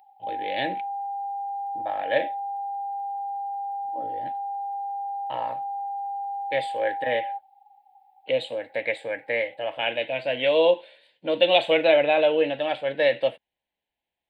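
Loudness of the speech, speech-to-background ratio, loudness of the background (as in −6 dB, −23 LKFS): −24.5 LKFS, 7.0 dB, −31.5 LKFS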